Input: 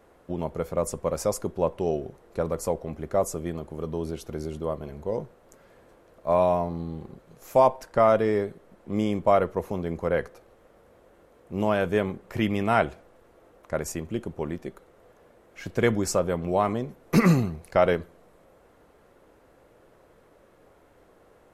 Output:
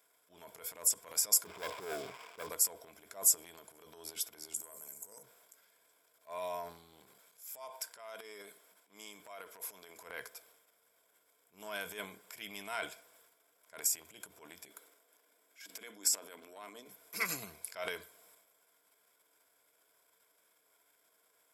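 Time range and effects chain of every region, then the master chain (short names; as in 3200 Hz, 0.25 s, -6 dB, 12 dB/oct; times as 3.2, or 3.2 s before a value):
1.45–2.49 switching spikes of -22 dBFS + brick-wall FIR low-pass 1300 Hz + sample leveller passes 3
4.54–5.23 resonant high shelf 5300 Hz +14 dB, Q 3 + notches 60/120/180/240/300/360/420/480/540 Hz + compressor 10:1, threshold -30 dBFS
7.09–10 HPF 330 Hz 6 dB/oct + compressor 4:1, threshold -27 dBFS
14.68–16.88 resonant low shelf 180 Hz -11 dB, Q 3 + de-hum 45.34 Hz, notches 6 + compressor 4:1, threshold -26 dBFS
whole clip: ripple EQ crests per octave 1.7, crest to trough 9 dB; transient shaper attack -9 dB, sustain +9 dB; differentiator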